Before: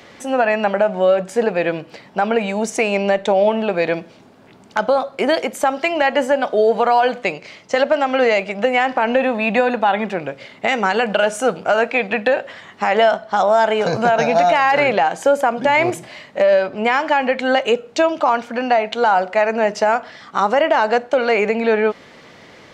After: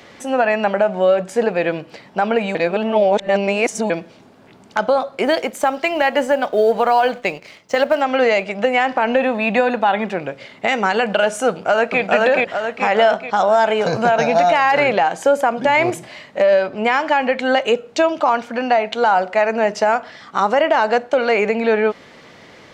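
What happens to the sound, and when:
0:02.55–0:03.90: reverse
0:05.24–0:08.01: mu-law and A-law mismatch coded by A
0:11.49–0:12.01: delay throw 430 ms, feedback 50%, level −0.5 dB

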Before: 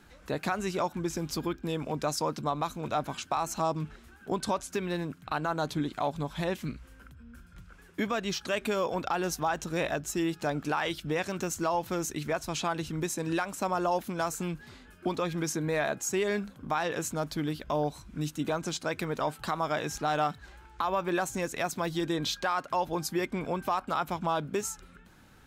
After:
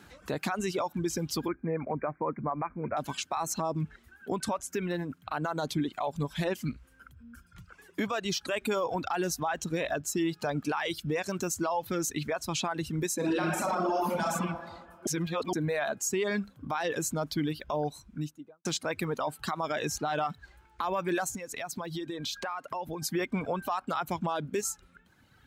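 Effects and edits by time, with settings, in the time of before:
0:01.48–0:02.97: Chebyshev low-pass filter 2,400 Hz, order 10
0:03.60–0:05.45: dynamic equaliser 3,900 Hz, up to −5 dB, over −54 dBFS, Q 1.4
0:13.15–0:14.28: thrown reverb, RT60 1.9 s, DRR −5 dB
0:15.07–0:15.53: reverse
0:17.88–0:18.65: fade out and dull
0:21.33–0:23.02: downward compressor 5 to 1, threshold −35 dBFS
whole clip: high-pass filter 67 Hz; reverb reduction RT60 1.9 s; brickwall limiter −25.5 dBFS; level +4 dB

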